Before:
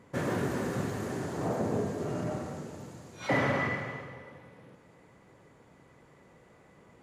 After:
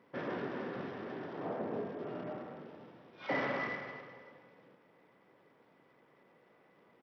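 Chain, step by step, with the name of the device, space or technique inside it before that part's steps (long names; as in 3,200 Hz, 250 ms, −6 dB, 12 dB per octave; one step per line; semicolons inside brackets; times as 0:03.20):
Bluetooth headset (high-pass filter 230 Hz 12 dB per octave; downsampling to 8,000 Hz; level −6 dB; SBC 64 kbit/s 44,100 Hz)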